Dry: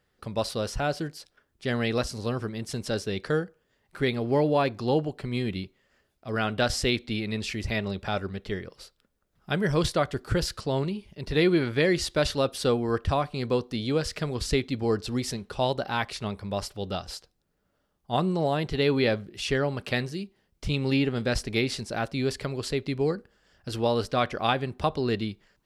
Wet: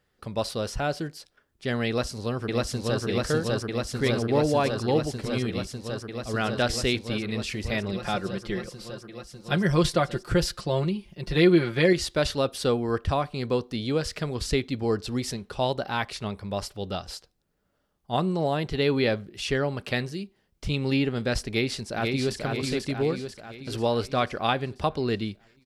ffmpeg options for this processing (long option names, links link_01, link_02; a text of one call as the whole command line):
ffmpeg -i in.wav -filter_complex "[0:a]asplit=2[link_01][link_02];[link_02]afade=type=in:start_time=1.88:duration=0.01,afade=type=out:start_time=3.02:duration=0.01,aecho=0:1:600|1200|1800|2400|3000|3600|4200|4800|5400|6000|6600|7200:1|0.85|0.7225|0.614125|0.522006|0.443705|0.37715|0.320577|0.272491|0.231617|0.196874|0.167343[link_03];[link_01][link_03]amix=inputs=2:normalize=0,asettb=1/sr,asplit=3[link_04][link_05][link_06];[link_04]atrim=end=7.924[link_07];[link_05]atrim=start=7.92:end=11.93,asetpts=PTS-STARTPTS,afade=type=in:duration=0.004:curve=qsin,afade=type=out:start_time=4.006:duration=0.004:curve=qsin,aecho=1:1:5.7:0.65,atrim=end_sample=176841[link_08];[link_06]atrim=start=11.926[link_09];[link_07][link_08]acrossfade=duration=0.004:curve1=hsin:curve2=qsin[link_10];[link_10][link_09]acrossfade=duration=0.004:curve1=qsin:curve2=hsin,asplit=2[link_11][link_12];[link_12]afade=type=in:start_time=21.48:duration=0.01,afade=type=out:start_time=22.42:duration=0.01,aecho=0:1:490|980|1470|1960|2450|2940|3430|3920:0.668344|0.367589|0.202174|0.111196|0.0611576|0.0336367|0.0185002|0.0101751[link_13];[link_11][link_13]amix=inputs=2:normalize=0" out.wav